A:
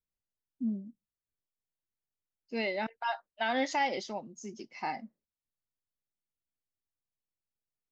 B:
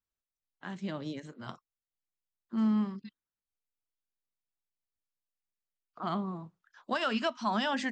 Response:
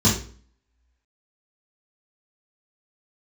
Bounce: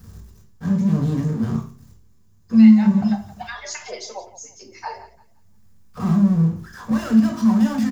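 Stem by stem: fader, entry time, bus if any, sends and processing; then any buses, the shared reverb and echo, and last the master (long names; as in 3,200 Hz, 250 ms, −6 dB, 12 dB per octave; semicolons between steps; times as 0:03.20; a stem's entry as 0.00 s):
+3.0 dB, 0.00 s, send −19 dB, echo send −14 dB, harmonic-percussive split with one part muted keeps percussive; auto-filter high-pass sine 3.8 Hz 340–1,700 Hz; high-shelf EQ 4,000 Hz +10.5 dB
−1.5 dB, 0.00 s, send −16 dB, no echo send, bass and treble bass +10 dB, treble −3 dB; brickwall limiter −25.5 dBFS, peak gain reduction 9.5 dB; power curve on the samples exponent 0.35; automatic ducking −8 dB, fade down 1.10 s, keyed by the first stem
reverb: on, RT60 0.45 s, pre-delay 3 ms
echo: repeating echo 172 ms, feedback 26%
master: parametric band 3,000 Hz −8 dB 1.2 octaves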